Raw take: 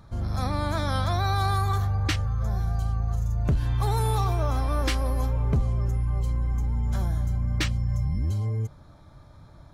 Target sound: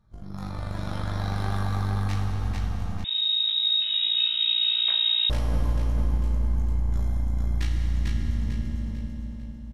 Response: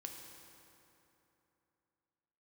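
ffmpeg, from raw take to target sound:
-filter_complex "[0:a]lowshelf=f=60:g=10.5,aeval=exprs='0.211*(cos(1*acos(clip(val(0)/0.211,-1,1)))-cos(1*PI/2))+0.0841*(cos(2*acos(clip(val(0)/0.211,-1,1)))-cos(2*PI/2))+0.0335*(cos(3*acos(clip(val(0)/0.211,-1,1)))-cos(3*PI/2))':c=same,flanger=delay=19.5:depth=3:speed=0.54,aecho=1:1:447|894|1341|1788|2235:0.708|0.283|0.113|0.0453|0.0181[a];[1:a]atrim=start_sample=2205,asetrate=27783,aresample=44100[b];[a][b]afir=irnorm=-1:irlink=0,asettb=1/sr,asplit=3[c][d][e];[c]atrim=end=3.044[f];[d]atrim=start=3.04:end=5.3,asetpts=PTS-STARTPTS,afade=t=in:d=0.004:c=qsin,afade=t=out:st=2.256:d=0.004:c=qsin,lowpass=f=3.2k:t=q:w=0.5098,lowpass=f=3.2k:t=q:w=0.6013,lowpass=f=3.2k:t=q:w=0.9,lowpass=f=3.2k:t=q:w=2.563,afreqshift=-3800[g];[e]atrim=start=5.296[h];[f][g]acrossfade=d=0.004:c1=hsin:c2=qsin[i];[i][h]acrossfade=d=0.004:c1=qsin:c2=hsin,volume=-5.5dB"

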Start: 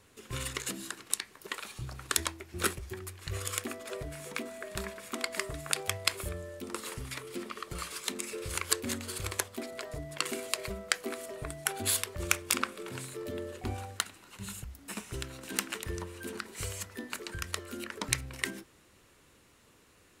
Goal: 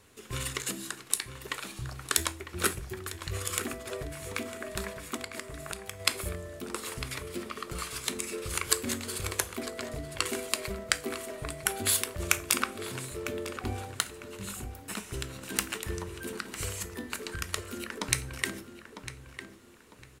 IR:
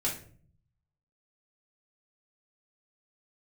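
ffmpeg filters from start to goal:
-filter_complex "[0:a]asplit=2[a][b];[1:a]atrim=start_sample=2205,highshelf=f=5.1k:g=10.5[c];[b][c]afir=irnorm=-1:irlink=0,volume=-20.5dB[d];[a][d]amix=inputs=2:normalize=0,asplit=3[e][f][g];[e]afade=t=out:st=5.16:d=0.02[h];[f]acompressor=threshold=-37dB:ratio=6,afade=t=in:st=5.16:d=0.02,afade=t=out:st=5.99:d=0.02[i];[g]afade=t=in:st=5.99:d=0.02[j];[h][i][j]amix=inputs=3:normalize=0,asplit=2[k][l];[l]adelay=952,lowpass=f=2.8k:p=1,volume=-9.5dB,asplit=2[m][n];[n]adelay=952,lowpass=f=2.8k:p=1,volume=0.33,asplit=2[o][p];[p]adelay=952,lowpass=f=2.8k:p=1,volume=0.33,asplit=2[q][r];[r]adelay=952,lowpass=f=2.8k:p=1,volume=0.33[s];[m][o][q][s]amix=inputs=4:normalize=0[t];[k][t]amix=inputs=2:normalize=0,volume=1dB"

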